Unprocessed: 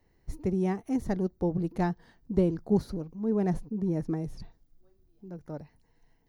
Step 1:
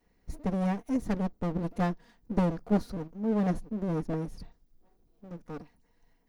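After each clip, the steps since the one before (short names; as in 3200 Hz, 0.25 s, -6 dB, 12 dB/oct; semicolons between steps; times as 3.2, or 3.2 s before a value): minimum comb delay 4.2 ms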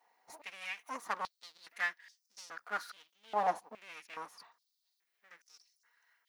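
stepped high-pass 2.4 Hz 840–5500 Hz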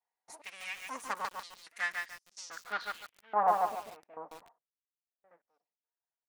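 gate with hold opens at -59 dBFS; low-pass sweep 9000 Hz -> 670 Hz, 2.3–3.8; lo-fi delay 0.145 s, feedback 35%, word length 8-bit, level -3 dB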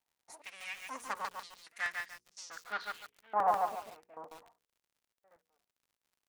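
notches 60/120/180/240/300/360/420/480 Hz; crackle 86/s -60 dBFS; crackling interface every 0.14 s, samples 64, repeat, from 0.32; gain -2 dB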